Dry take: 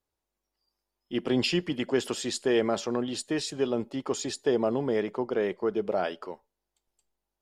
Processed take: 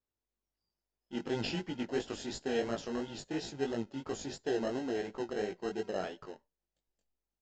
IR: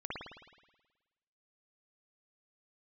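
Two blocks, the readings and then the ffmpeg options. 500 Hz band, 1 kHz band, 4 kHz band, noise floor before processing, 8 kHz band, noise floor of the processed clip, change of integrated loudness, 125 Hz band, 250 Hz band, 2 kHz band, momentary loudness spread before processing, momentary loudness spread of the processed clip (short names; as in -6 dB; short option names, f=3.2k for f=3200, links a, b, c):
-8.5 dB, -7.0 dB, -9.0 dB, under -85 dBFS, -10.5 dB, under -85 dBFS, -8.0 dB, -7.0 dB, -8.0 dB, -7.0 dB, 7 LU, 7 LU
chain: -filter_complex "[0:a]asplit=2[a][b];[b]acrusher=samples=38:mix=1:aa=0.000001,volume=-4.5dB[c];[a][c]amix=inputs=2:normalize=0,aresample=16000,aresample=44100,flanger=delay=17.5:depth=4.1:speed=2.9,volume=-7.5dB"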